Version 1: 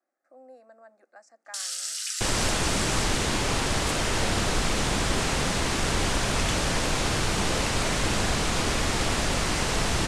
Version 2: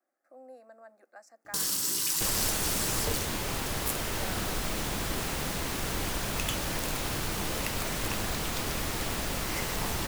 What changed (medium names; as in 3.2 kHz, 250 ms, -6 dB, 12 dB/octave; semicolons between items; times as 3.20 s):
first sound: remove brick-wall FIR high-pass 1.2 kHz; second sound -7.5 dB; master: remove low-pass 9.1 kHz 24 dB/octave